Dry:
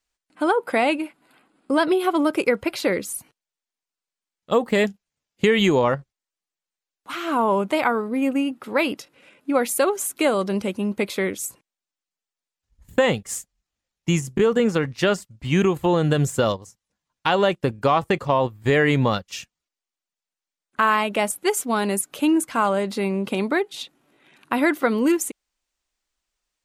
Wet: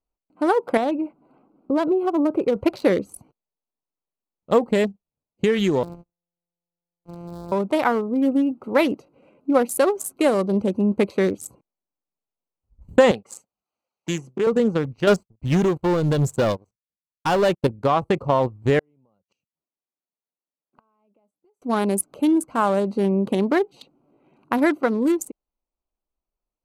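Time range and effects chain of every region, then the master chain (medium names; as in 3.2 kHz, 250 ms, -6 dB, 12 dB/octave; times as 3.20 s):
0.77–2.56 s: treble shelf 2.9 kHz -8.5 dB + compression 1.5:1, threshold -31 dBFS
5.83–7.52 s: sorted samples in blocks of 256 samples + compression 8:1, threshold -30 dBFS
13.11–14.47 s: frequency weighting A + tape noise reduction on one side only encoder only
15.07–17.67 s: waveshaping leveller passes 3 + upward expansion, over -33 dBFS
18.79–21.62 s: high-pass 140 Hz + compression 12:1, threshold -25 dBFS + inverted gate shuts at -31 dBFS, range -32 dB
whole clip: local Wiener filter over 25 samples; peaking EQ 2.5 kHz -4.5 dB 1.4 oct; gain riding 0.5 s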